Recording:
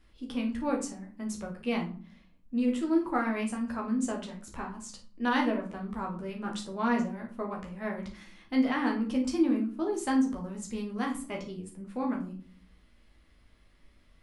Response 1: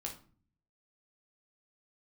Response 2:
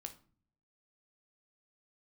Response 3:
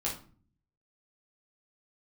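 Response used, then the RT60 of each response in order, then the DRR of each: 1; 0.40 s, 0.45 s, 0.40 s; -0.5 dB, 6.0 dB, -5.5 dB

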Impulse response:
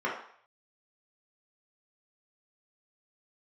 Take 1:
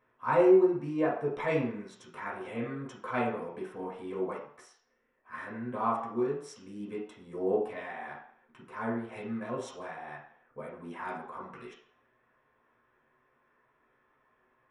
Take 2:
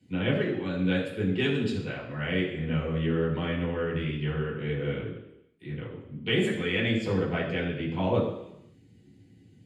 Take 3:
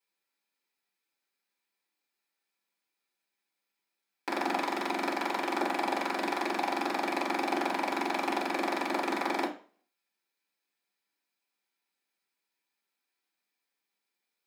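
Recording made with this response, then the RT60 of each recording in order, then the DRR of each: 1; 0.60 s, 0.85 s, 0.40 s; -5.0 dB, -6.0 dB, -8.0 dB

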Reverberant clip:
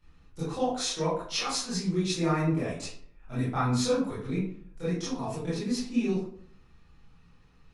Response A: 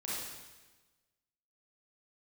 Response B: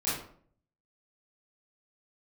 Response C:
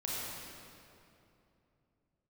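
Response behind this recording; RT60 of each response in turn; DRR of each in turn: B; 1.2 s, 0.55 s, 2.8 s; -8.0 dB, -11.5 dB, -6.5 dB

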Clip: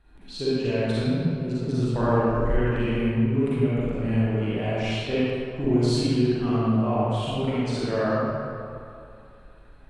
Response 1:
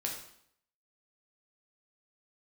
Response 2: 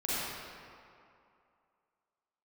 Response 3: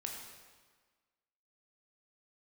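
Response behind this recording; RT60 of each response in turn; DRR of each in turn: 2; 0.65 s, 2.5 s, 1.5 s; -1.0 dB, -10.5 dB, 0.0 dB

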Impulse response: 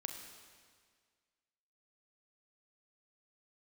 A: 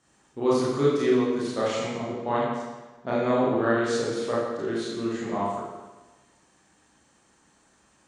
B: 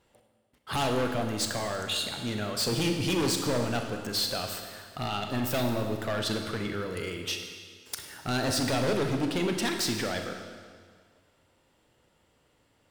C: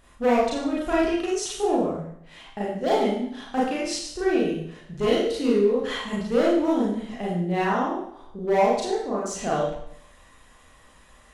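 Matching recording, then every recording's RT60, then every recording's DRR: B; 1.2 s, 1.8 s, 0.70 s; -7.5 dB, 4.0 dB, -7.0 dB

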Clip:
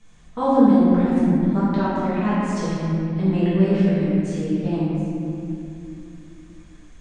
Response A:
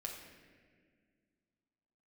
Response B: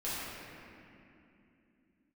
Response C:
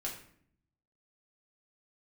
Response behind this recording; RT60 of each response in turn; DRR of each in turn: B; 1.9 s, 2.7 s, 0.60 s; 0.0 dB, -11.5 dB, -3.5 dB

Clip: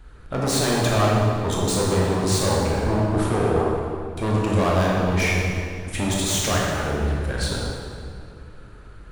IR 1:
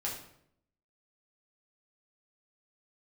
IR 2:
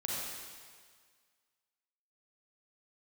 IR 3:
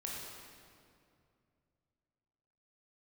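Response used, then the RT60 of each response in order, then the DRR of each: 3; 0.70 s, 1.8 s, 2.4 s; -5.0 dB, -5.0 dB, -4.0 dB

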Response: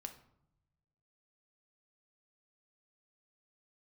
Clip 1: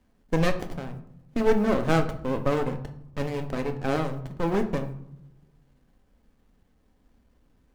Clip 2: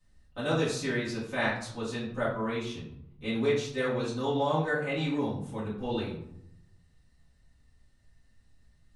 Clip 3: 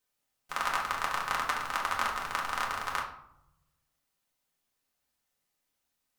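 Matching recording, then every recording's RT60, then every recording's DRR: 1; 0.80 s, 0.75 s, 0.75 s; 5.5 dB, -10.5 dB, -2.5 dB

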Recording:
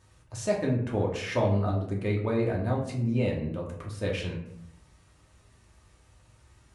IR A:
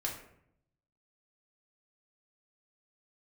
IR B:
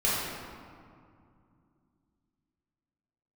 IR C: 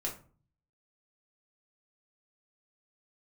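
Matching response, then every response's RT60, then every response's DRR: A; 0.70 s, 2.3 s, 0.40 s; -2.5 dB, -8.0 dB, -2.5 dB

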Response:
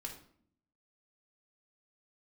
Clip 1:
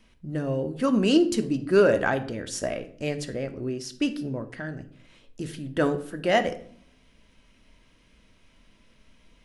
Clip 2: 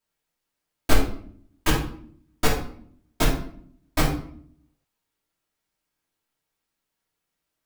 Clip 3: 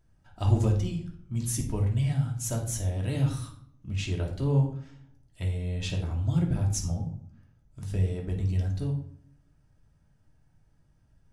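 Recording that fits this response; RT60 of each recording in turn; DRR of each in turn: 3; 0.60 s, 0.60 s, 0.60 s; 7.5 dB, -7.5 dB, -0.5 dB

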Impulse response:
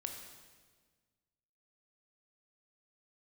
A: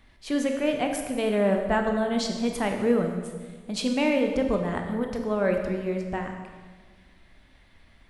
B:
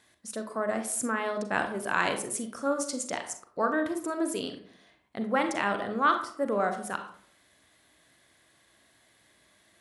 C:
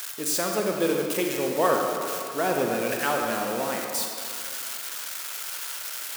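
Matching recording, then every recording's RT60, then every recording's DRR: A; 1.5 s, 0.55 s, 2.4 s; 3.0 dB, 6.0 dB, 0.5 dB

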